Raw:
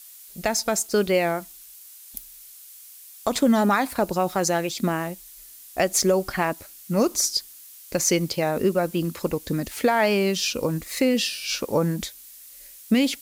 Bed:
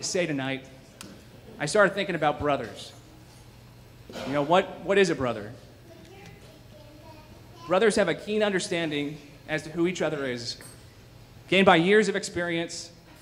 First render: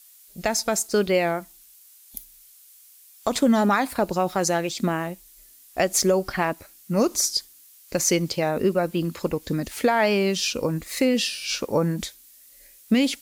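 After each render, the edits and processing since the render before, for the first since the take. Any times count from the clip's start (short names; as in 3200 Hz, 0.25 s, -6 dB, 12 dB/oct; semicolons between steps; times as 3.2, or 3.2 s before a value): noise print and reduce 6 dB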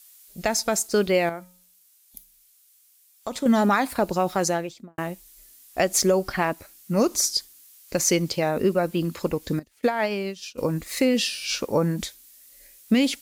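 1.29–3.46 resonator 180 Hz, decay 0.54 s, harmonics odd; 4.4–4.98 studio fade out; 9.59–10.58 upward expander 2.5:1, over -34 dBFS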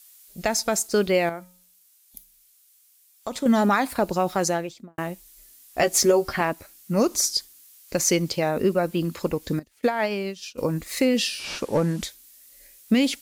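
5.79–6.41 doubler 13 ms -4 dB; 11.39–12.02 delta modulation 64 kbps, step -40 dBFS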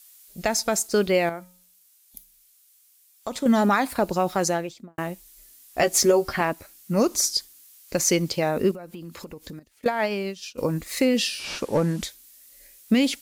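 8.71–9.86 compressor 8:1, threshold -35 dBFS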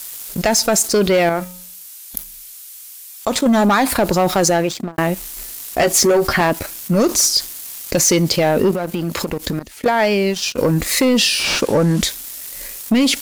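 sample leveller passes 2; fast leveller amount 50%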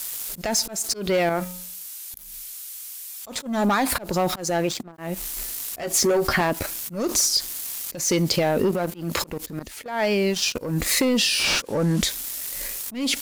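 compressor 6:1, threshold -18 dBFS, peak gain reduction 7 dB; auto swell 0.215 s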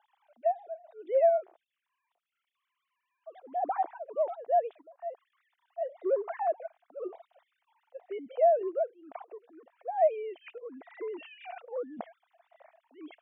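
sine-wave speech; band-pass 690 Hz, Q 6.1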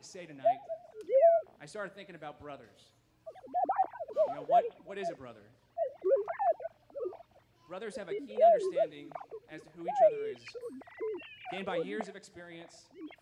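add bed -20.5 dB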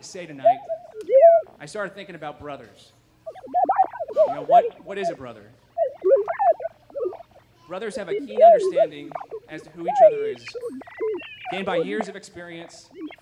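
gain +11 dB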